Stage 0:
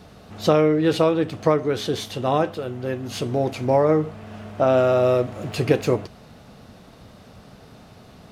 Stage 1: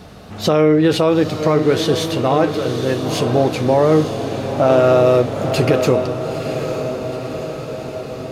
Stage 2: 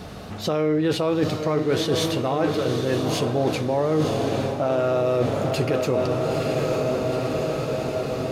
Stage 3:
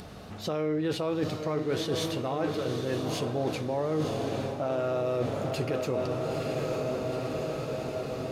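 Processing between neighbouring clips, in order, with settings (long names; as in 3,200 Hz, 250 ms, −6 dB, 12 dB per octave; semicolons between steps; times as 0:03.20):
brickwall limiter −12 dBFS, peak gain reduction 7.5 dB; on a send: feedback delay with all-pass diffusion 910 ms, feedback 63%, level −8 dB; on the sum: level +7 dB
reversed playback; downward compressor, threshold −21 dBFS, peak gain reduction 12 dB; reversed playback; tuned comb filter 140 Hz, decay 1.5 s, mix 50%; level +7.5 dB
upward compression, threshold −37 dBFS; level −7.5 dB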